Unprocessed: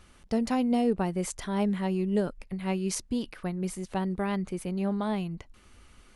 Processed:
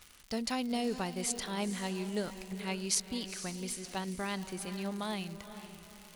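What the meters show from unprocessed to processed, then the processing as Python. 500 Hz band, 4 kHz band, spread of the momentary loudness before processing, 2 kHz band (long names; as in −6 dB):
−7.5 dB, +4.5 dB, 8 LU, −0.5 dB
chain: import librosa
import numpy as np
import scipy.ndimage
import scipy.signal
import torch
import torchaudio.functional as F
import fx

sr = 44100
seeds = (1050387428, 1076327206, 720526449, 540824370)

y = fx.dmg_crackle(x, sr, seeds[0], per_s=150.0, level_db=-40.0)
y = fx.tilt_shelf(y, sr, db=-6.0, hz=1300.0)
y = fx.echo_diffused(y, sr, ms=471, feedback_pct=40, wet_db=-11.0)
y = fx.dynamic_eq(y, sr, hz=4300.0, q=2.0, threshold_db=-54.0, ratio=4.0, max_db=5)
y = y * 10.0 ** (-3.5 / 20.0)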